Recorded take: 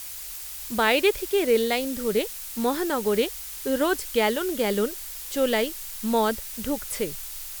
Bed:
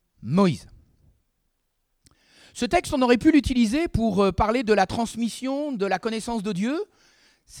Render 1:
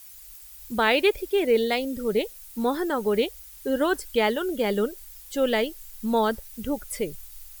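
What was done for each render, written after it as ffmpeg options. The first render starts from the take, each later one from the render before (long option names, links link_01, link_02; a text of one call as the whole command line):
ffmpeg -i in.wav -af "afftdn=noise_reduction=13:noise_floor=-37" out.wav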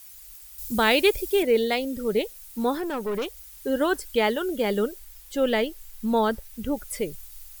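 ffmpeg -i in.wav -filter_complex "[0:a]asettb=1/sr,asplit=3[link_01][link_02][link_03];[link_01]atrim=end=0.584[link_04];[link_02]atrim=start=0.58:end=1.43,asetpts=PTS-STARTPTS,afade=type=in:duration=0.004:curve=qsin,afade=type=out:start_time=0.846:duration=0.004:curve=qsin,bass=frequency=250:gain=6,treble=frequency=4000:gain=8[link_05];[link_03]atrim=start=1.426[link_06];[link_04][link_05]acrossfade=duration=0.004:curve1=hsin:curve2=qsin[link_07];[link_07][link_06]acrossfade=duration=0.004:curve1=qsin:curve2=hsin,asettb=1/sr,asplit=3[link_08][link_09][link_10];[link_08]atrim=end=2.784[link_11];[link_09]atrim=start=2.78:end=3.37,asetpts=PTS-STARTPTS,afade=type=in:duration=0.004:curve=qsin,afade=type=out:start_time=0.586:duration=0.004:curve=qsin,aeval=exprs='(tanh(15.8*val(0)+0.3)-tanh(0.3))/15.8':channel_layout=same[link_12];[link_10]atrim=start=3.366[link_13];[link_11][link_12]acrossfade=duration=0.004:curve1=hsin:curve2=qsin[link_14];[link_14][link_13]acrossfade=duration=0.004:curve1=qsin:curve2=hsin,asettb=1/sr,asplit=3[link_15][link_16][link_17];[link_15]atrim=end=4.984[link_18];[link_16]atrim=start=4.98:end=6.77,asetpts=PTS-STARTPTS,afade=type=in:duration=0.004:curve=qsin,afade=type=out:start_time=1.786:duration=0.004:curve=qsin,bass=frequency=250:gain=2,treble=frequency=4000:gain=-3[link_19];[link_17]atrim=start=6.766[link_20];[link_18][link_19]acrossfade=duration=0.004:curve1=hsin:curve2=qsin[link_21];[link_21][link_20]acrossfade=duration=0.004:curve1=qsin:curve2=hsin" out.wav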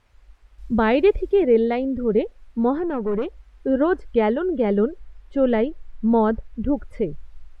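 ffmpeg -i in.wav -af "lowpass=1700,lowshelf=frequency=430:gain=9" out.wav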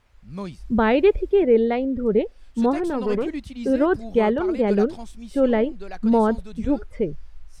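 ffmpeg -i in.wav -i bed.wav -filter_complex "[1:a]volume=-13.5dB[link_01];[0:a][link_01]amix=inputs=2:normalize=0" out.wav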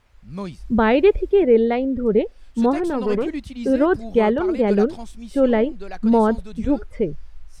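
ffmpeg -i in.wav -af "volume=2dB" out.wav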